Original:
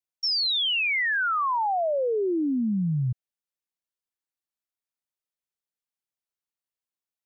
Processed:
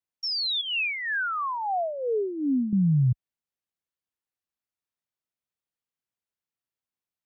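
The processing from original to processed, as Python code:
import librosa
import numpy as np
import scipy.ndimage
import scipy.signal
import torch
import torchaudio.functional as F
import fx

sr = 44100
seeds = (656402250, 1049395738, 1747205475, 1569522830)

y = scipy.signal.sosfilt(scipy.signal.butter(2, 49.0, 'highpass', fs=sr, output='sos'), x)
y = fx.bass_treble(y, sr, bass_db=5, treble_db=-5)
y = fx.harmonic_tremolo(y, sr, hz=2.6, depth_pct=70, crossover_hz=1200.0, at=(0.61, 2.73))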